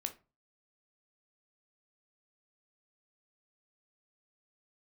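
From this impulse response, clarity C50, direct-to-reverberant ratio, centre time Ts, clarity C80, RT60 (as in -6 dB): 14.0 dB, 6.0 dB, 8 ms, 22.5 dB, no single decay rate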